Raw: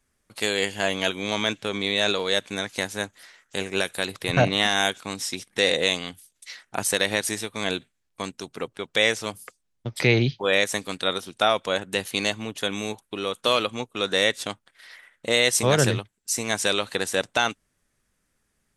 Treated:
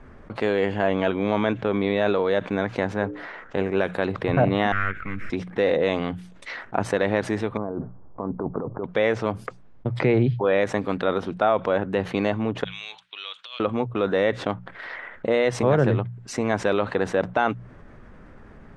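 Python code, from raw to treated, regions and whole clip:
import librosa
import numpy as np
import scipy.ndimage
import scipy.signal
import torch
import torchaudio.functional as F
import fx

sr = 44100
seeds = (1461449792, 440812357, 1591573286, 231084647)

y = fx.chain(x, sr, fx.lowpass(hz=4000.0, slope=6),
    fx.hum_notches(base_hz=60, count=9), at=(2.94, 3.58))
y = fx.chain(y, sr, fx.halfwave_gain(db=-12.0),
    fx.curve_eq(hz=(120.0, 590.0, 920.0, 1300.0, 2200.0, 3600.0, 5600.0, 12000.0), db=(0, -12, -25, 3, 9, -13, -16, -3)),
    fx.doppler_dist(depth_ms=0.23), at=(4.72, 5.3))
y = fx.chain(y, sr, fx.steep_lowpass(hz=1200.0, slope=36),
    fx.over_compress(threshold_db=-40.0, ratio=-1.0), at=(7.57, 8.84))
y = fx.chain(y, sr, fx.ladder_bandpass(hz=4000.0, resonance_pct=45),
    fx.over_compress(threshold_db=-38.0, ratio=-0.5), at=(12.64, 13.6))
y = scipy.signal.sosfilt(scipy.signal.butter(2, 1200.0, 'lowpass', fs=sr, output='sos'), y)
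y = fx.hum_notches(y, sr, base_hz=60, count=3)
y = fx.env_flatten(y, sr, amount_pct=50)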